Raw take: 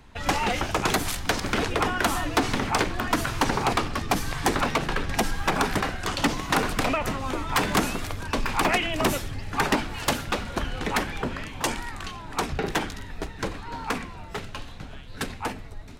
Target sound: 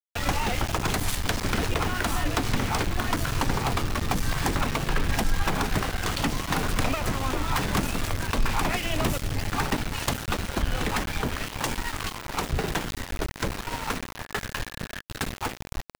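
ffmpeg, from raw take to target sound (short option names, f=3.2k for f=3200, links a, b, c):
-filter_complex "[0:a]acrossover=split=160[a][b];[b]acompressor=threshold=-34dB:ratio=3[c];[a][c]amix=inputs=2:normalize=0,aeval=exprs='val(0)*gte(abs(val(0)),0.0211)':c=same,asettb=1/sr,asplit=3[d][e][f];[d]atrim=end=14.174[g];[e]atrim=start=14.17:end=15.04,asetpts=PTS-STARTPTS,afade=t=in:d=0.004:c=qsin,afade=t=out:st=0.866:d=0.004:c=qsin,equalizer=f=1.7k:t=o:w=0.24:g=10[h];[f]atrim=start=15.036[i];[g][h]acrossfade=d=0.004:c1=hsin:c2=qsin[j];[j][i]acrossfade=d=0.004:c1=qsin:c2=hsin,volume=5.5dB"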